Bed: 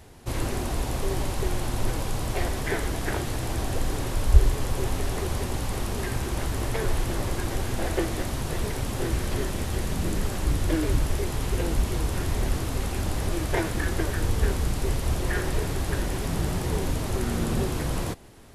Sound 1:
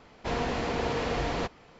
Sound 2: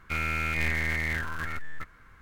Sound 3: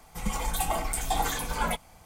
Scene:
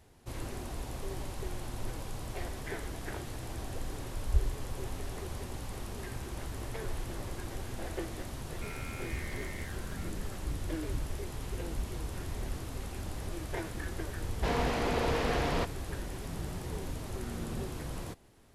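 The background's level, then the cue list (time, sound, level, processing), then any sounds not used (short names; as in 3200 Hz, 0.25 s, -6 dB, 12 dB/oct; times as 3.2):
bed -11.5 dB
8.51 add 2 -16.5 dB
14.18 add 1 -1 dB + Doppler distortion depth 0.23 ms
not used: 3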